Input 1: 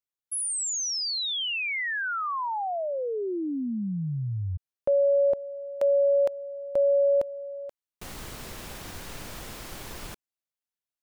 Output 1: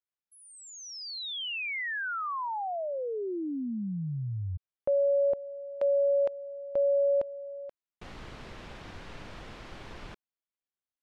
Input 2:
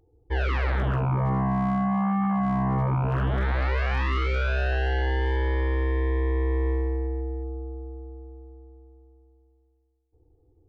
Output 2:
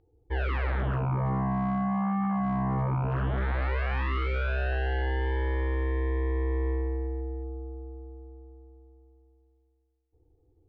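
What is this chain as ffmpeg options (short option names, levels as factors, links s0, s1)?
-af "lowpass=3400,volume=0.668"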